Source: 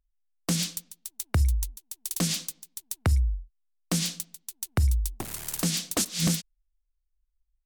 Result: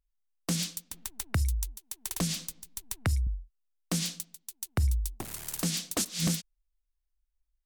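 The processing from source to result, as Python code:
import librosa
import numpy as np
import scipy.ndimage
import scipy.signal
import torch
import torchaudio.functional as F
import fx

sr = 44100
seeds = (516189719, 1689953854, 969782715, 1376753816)

y = fx.band_squash(x, sr, depth_pct=70, at=(0.91, 3.27))
y = F.gain(torch.from_numpy(y), -3.5).numpy()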